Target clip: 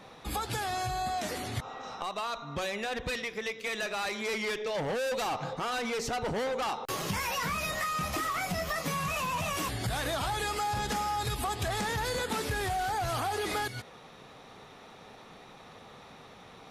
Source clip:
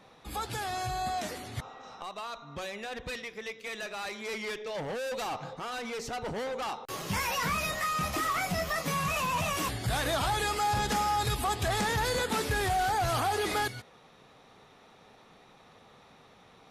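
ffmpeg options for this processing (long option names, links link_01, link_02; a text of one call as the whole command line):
ffmpeg -i in.wav -af "acompressor=threshold=-36dB:ratio=6,volume=6dB" out.wav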